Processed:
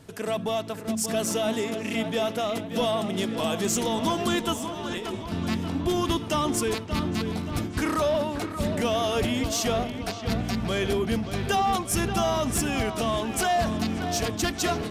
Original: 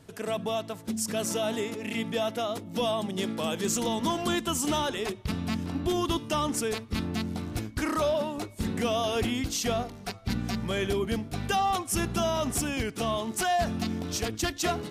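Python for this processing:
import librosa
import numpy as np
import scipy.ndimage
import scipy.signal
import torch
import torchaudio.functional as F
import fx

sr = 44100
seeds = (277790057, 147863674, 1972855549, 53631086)

p1 = 10.0 ** (-28.5 / 20.0) * np.tanh(x / 10.0 ** (-28.5 / 20.0))
p2 = x + (p1 * librosa.db_to_amplitude(-5.5))
p3 = fx.over_compress(p2, sr, threshold_db=-36.0, ratio=-1.0, at=(4.53, 5.32))
y = fx.echo_wet_lowpass(p3, sr, ms=580, feedback_pct=57, hz=3800.0, wet_db=-9)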